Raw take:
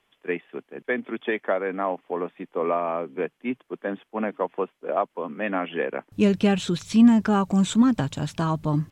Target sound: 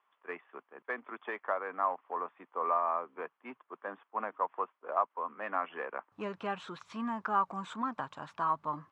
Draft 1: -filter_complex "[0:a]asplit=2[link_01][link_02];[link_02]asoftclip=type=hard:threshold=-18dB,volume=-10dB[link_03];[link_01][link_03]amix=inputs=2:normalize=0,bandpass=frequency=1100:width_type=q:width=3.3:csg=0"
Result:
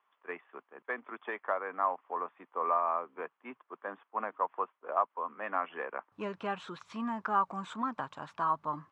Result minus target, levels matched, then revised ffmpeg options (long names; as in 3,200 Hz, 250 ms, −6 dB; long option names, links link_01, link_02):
hard clipping: distortion −5 dB
-filter_complex "[0:a]asplit=2[link_01][link_02];[link_02]asoftclip=type=hard:threshold=-24dB,volume=-10dB[link_03];[link_01][link_03]amix=inputs=2:normalize=0,bandpass=frequency=1100:width_type=q:width=3.3:csg=0"